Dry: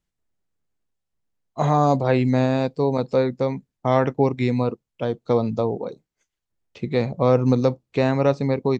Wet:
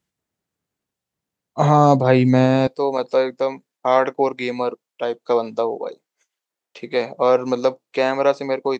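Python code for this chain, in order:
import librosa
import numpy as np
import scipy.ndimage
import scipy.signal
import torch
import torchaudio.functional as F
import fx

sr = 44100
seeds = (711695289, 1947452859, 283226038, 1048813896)

y = fx.highpass(x, sr, hz=fx.steps((0.0, 100.0), (2.67, 470.0)), slope=12)
y = y * 10.0 ** (5.0 / 20.0)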